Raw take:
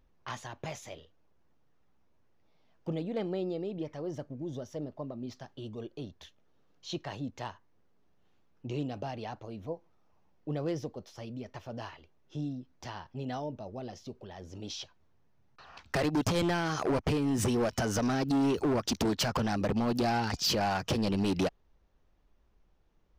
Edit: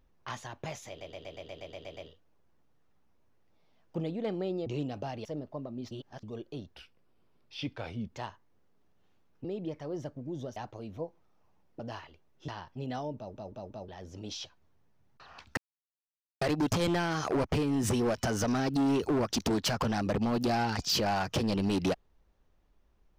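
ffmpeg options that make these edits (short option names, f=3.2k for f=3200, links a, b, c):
-filter_complex "[0:a]asplit=25[a][b][c][d][e][f][g][h][i][j][k][l][m][n][o][p][q][r][s][t][u][v][w][x][y];[a]atrim=end=1.012[z];[b]atrim=start=0.888:end=1.012[aa];[c]atrim=start=0.888:end=1.012[ab];[d]atrim=start=0.888:end=1.012[ac];[e]atrim=start=0.888:end=1.012[ad];[f]atrim=start=0.888:end=1.012[ae];[g]atrim=start=0.888:end=1.012[af];[h]atrim=start=0.888:end=1.012[ag];[i]atrim=start=0.888:end=1.012[ah];[j]atrim=start=0.888:end=3.582[ai];[k]atrim=start=8.658:end=9.252[aj];[l]atrim=start=4.698:end=5.362[ak];[m]atrim=start=5.358:end=5.682,asetpts=PTS-STARTPTS,areverse[al];[n]atrim=start=5.678:end=6.204[am];[o]atrim=start=6.2:end=7.34,asetpts=PTS-STARTPTS,asetrate=36603,aresample=44100,atrim=end_sample=60571,asetpts=PTS-STARTPTS[an];[p]atrim=start=7.336:end=8.662[ao];[q]atrim=start=3.578:end=4.702[ap];[r]atrim=start=9.248:end=10.482[aq];[s]atrim=start=11.688:end=12.382[ar];[t]atrim=start=12.868:end=13.732[as];[u]atrim=start=13.548:end=13.732[at];[v]atrim=start=13.548:end=13.732[au];[w]atrim=start=13.548:end=13.732[av];[x]atrim=start=14.268:end=15.96,asetpts=PTS-STARTPTS,afade=t=out:st=1.688:d=0.004:c=hsin,apad=pad_dur=0.84[aw];[y]atrim=start=15.96,asetpts=PTS-STARTPTS,afade=t=in:d=0.004:c=hsin[ax];[z][aa]acrossfade=d=0.004:c1=hsin:c2=hsin[ay];[ay][ab]acrossfade=d=0.004:c1=hsin:c2=hsin[az];[az][ac]acrossfade=d=0.004:c1=hsin:c2=hsin[ba];[ba][ad]acrossfade=d=0.004:c1=hsin:c2=hsin[bb];[bb][ae]acrossfade=d=0.004:c1=hsin:c2=hsin[bc];[bc][af]acrossfade=d=0.004:c1=hsin:c2=hsin[bd];[bd][ag]acrossfade=d=0.004:c1=hsin:c2=hsin[be];[be][ah]acrossfade=d=0.004:c1=hsin:c2=hsin[bf];[bf][ai]acrossfade=d=0.004:c1=hsin:c2=hsin[bg];[bg][aj]acrossfade=d=0.004:c1=hsin:c2=hsin[bh];[bh][ak]acrossfade=d=0.004:c1=hsin:c2=hsin[bi];[bi][al]acrossfade=d=0.004:c1=hsin:c2=hsin[bj];[bj][am]acrossfade=d=0.004:c1=hsin:c2=hsin[bk];[bk][an]acrossfade=d=0.004:c1=hsin:c2=hsin[bl];[bl][ao]acrossfade=d=0.004:c1=hsin:c2=hsin[bm];[bm][ap]acrossfade=d=0.004:c1=hsin:c2=hsin[bn];[bn][aq]acrossfade=d=0.004:c1=hsin:c2=hsin[bo];[bo][ar]acrossfade=d=0.004:c1=hsin:c2=hsin[bp];[bp][as]acrossfade=d=0.004:c1=hsin:c2=hsin[bq];[bq][at]acrossfade=d=0.004:c1=hsin:c2=hsin[br];[br][au]acrossfade=d=0.004:c1=hsin:c2=hsin[bs];[bs][av]acrossfade=d=0.004:c1=hsin:c2=hsin[bt];[aw][ax]concat=n=2:v=0:a=1[bu];[bt][bu]acrossfade=d=0.004:c1=hsin:c2=hsin"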